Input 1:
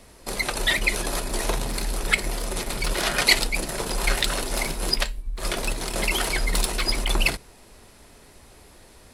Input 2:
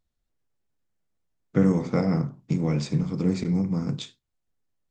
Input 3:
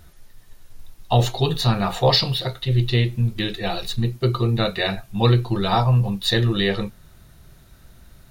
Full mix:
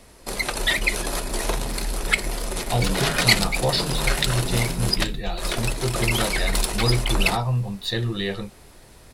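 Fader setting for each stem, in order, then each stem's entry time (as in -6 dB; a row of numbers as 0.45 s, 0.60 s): +0.5 dB, -10.0 dB, -6.0 dB; 0.00 s, 1.25 s, 1.60 s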